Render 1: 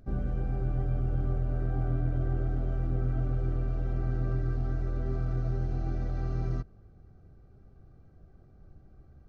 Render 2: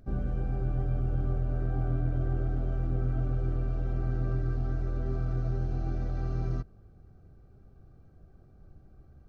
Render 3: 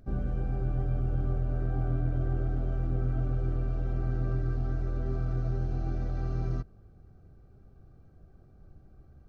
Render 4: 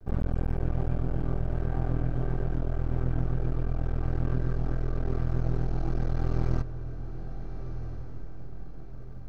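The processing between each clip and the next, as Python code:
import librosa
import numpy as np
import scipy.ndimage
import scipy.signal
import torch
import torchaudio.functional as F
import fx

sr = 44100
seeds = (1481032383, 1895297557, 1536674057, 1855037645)

y1 = fx.notch(x, sr, hz=2000.0, q=19.0)
y2 = y1
y3 = np.maximum(y2, 0.0)
y3 = fx.echo_diffused(y3, sr, ms=1388, feedback_pct=41, wet_db=-14.0)
y3 = fx.rider(y3, sr, range_db=5, speed_s=2.0)
y3 = y3 * librosa.db_to_amplitude(5.0)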